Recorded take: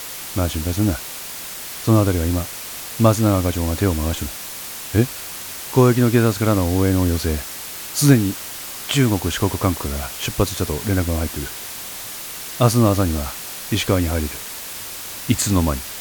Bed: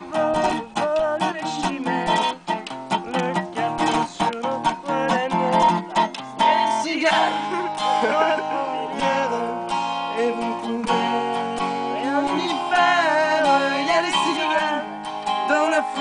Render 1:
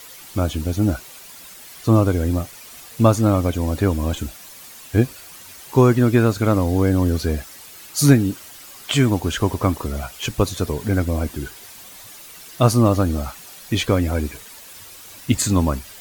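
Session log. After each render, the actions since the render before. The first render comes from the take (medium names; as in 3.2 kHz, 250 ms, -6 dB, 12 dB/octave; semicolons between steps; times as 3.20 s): noise reduction 11 dB, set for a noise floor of -32 dBFS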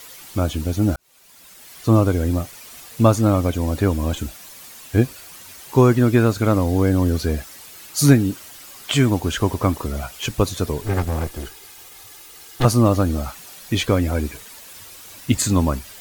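0.96–1.89 s: fade in; 10.81–12.65 s: comb filter that takes the minimum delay 2.4 ms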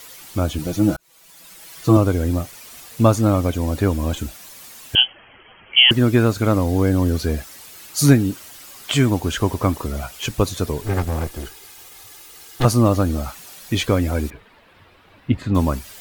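0.58–1.97 s: comb 6.1 ms, depth 76%; 4.95–5.91 s: frequency inversion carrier 3.2 kHz; 14.30–15.55 s: distance through air 460 m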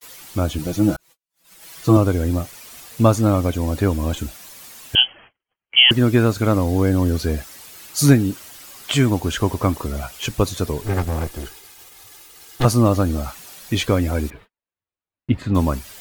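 gate -42 dBFS, range -45 dB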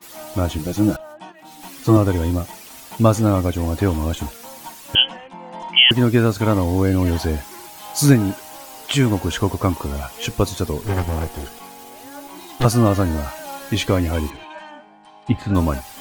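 add bed -16.5 dB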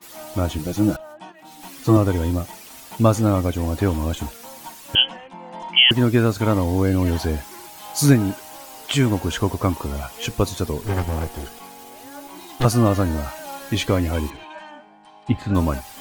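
trim -1.5 dB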